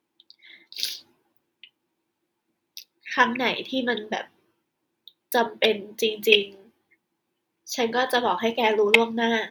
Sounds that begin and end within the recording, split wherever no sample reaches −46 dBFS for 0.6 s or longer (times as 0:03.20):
0:02.77–0:04.27
0:05.08–0:06.67